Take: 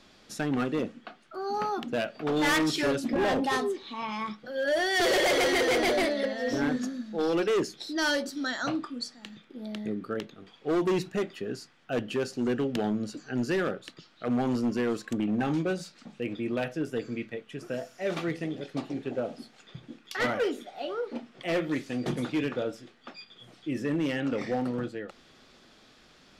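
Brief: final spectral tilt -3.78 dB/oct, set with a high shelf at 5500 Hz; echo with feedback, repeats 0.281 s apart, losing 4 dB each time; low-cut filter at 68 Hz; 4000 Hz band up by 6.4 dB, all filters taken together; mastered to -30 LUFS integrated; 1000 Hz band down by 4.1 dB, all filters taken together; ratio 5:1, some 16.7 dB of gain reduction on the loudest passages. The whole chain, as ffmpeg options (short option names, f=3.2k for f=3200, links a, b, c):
-af "highpass=68,equalizer=f=1k:t=o:g=-6.5,equalizer=f=4k:t=o:g=5.5,highshelf=f=5.5k:g=7.5,acompressor=threshold=-40dB:ratio=5,aecho=1:1:281|562|843|1124|1405|1686|1967|2248|2529:0.631|0.398|0.25|0.158|0.0994|0.0626|0.0394|0.0249|0.0157,volume=10dB"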